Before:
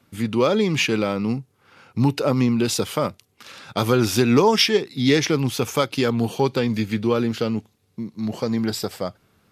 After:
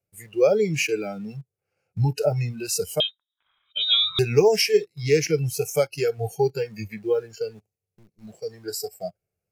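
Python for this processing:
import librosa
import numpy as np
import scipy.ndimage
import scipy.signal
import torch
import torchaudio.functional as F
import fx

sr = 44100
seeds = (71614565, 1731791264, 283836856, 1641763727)

p1 = fx.band_shelf(x, sr, hz=1500.0, db=-12.0, octaves=1.0)
p2 = fx.fixed_phaser(p1, sr, hz=960.0, stages=6)
p3 = fx.quant_dither(p2, sr, seeds[0], bits=6, dither='none')
p4 = p2 + F.gain(torch.from_numpy(p3), -6.0).numpy()
p5 = fx.noise_reduce_blind(p4, sr, reduce_db=19)
y = fx.freq_invert(p5, sr, carrier_hz=3800, at=(3.0, 4.19))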